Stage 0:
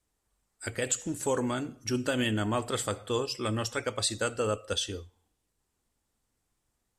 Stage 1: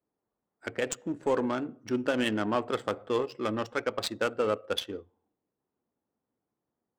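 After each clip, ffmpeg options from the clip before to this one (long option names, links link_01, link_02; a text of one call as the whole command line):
ffmpeg -i in.wav -af "highpass=210,adynamicsmooth=sensitivity=3:basefreq=950,volume=2.5dB" out.wav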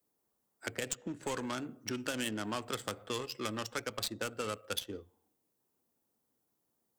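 ffmpeg -i in.wav -filter_complex "[0:a]crystalizer=i=3:c=0,acrossover=split=190|1200|5000[link_01][link_02][link_03][link_04];[link_01]acompressor=threshold=-44dB:ratio=4[link_05];[link_02]acompressor=threshold=-41dB:ratio=4[link_06];[link_03]acompressor=threshold=-40dB:ratio=4[link_07];[link_04]acompressor=threshold=-41dB:ratio=4[link_08];[link_05][link_06][link_07][link_08]amix=inputs=4:normalize=0" out.wav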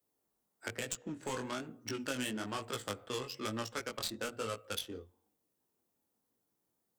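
ffmpeg -i in.wav -af "flanger=delay=17:depth=6.7:speed=1.1,volume=1.5dB" out.wav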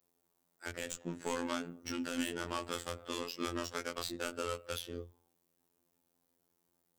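ffmpeg -i in.wav -filter_complex "[0:a]acrossover=split=100[link_01][link_02];[link_02]alimiter=level_in=5.5dB:limit=-24dB:level=0:latency=1:release=94,volume=-5.5dB[link_03];[link_01][link_03]amix=inputs=2:normalize=0,afftfilt=real='hypot(re,im)*cos(PI*b)':imag='0':win_size=2048:overlap=0.75,volume=6.5dB" out.wav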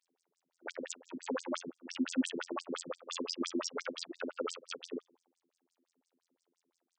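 ffmpeg -i in.wav -af "afftfilt=real='re*between(b*sr/1024,240*pow(6700/240,0.5+0.5*sin(2*PI*5.8*pts/sr))/1.41,240*pow(6700/240,0.5+0.5*sin(2*PI*5.8*pts/sr))*1.41)':imag='im*between(b*sr/1024,240*pow(6700/240,0.5+0.5*sin(2*PI*5.8*pts/sr))/1.41,240*pow(6700/240,0.5+0.5*sin(2*PI*5.8*pts/sr))*1.41)':win_size=1024:overlap=0.75,volume=8dB" out.wav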